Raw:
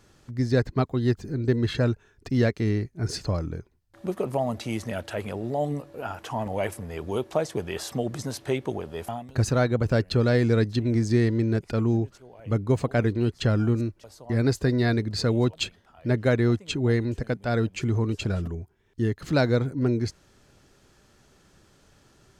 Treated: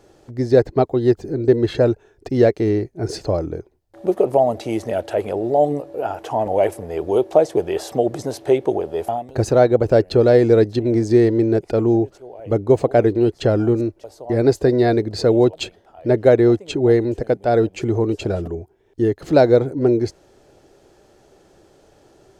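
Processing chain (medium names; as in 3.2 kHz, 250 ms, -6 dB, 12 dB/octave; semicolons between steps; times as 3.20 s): high-order bell 510 Hz +11 dB; trim +1 dB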